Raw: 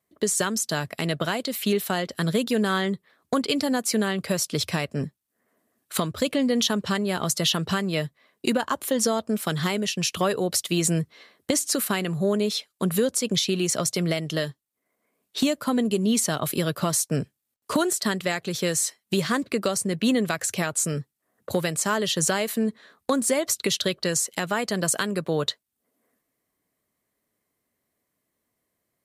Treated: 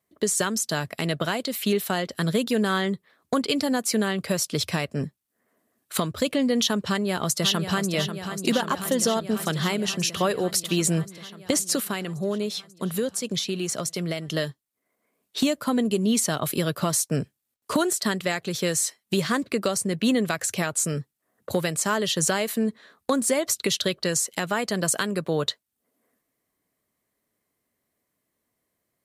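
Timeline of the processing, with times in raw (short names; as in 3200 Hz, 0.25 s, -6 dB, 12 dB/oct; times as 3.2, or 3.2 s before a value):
6.88–7.93 echo throw 0.54 s, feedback 80%, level -8.5 dB
11.8–14.28 gain -4 dB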